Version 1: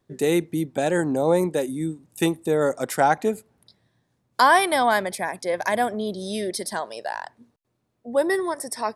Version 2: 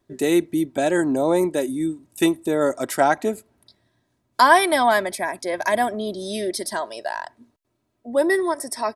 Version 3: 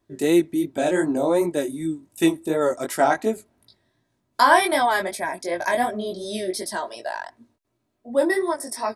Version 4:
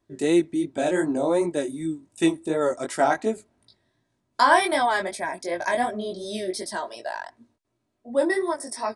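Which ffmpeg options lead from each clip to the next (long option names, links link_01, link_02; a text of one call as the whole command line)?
ffmpeg -i in.wav -af "aecho=1:1:3.1:0.47,volume=1dB" out.wav
ffmpeg -i in.wav -af "flanger=delay=17.5:depth=4.4:speed=2.7,volume=1.5dB" out.wav
ffmpeg -i in.wav -af "aresample=22050,aresample=44100,volume=-2dB" out.wav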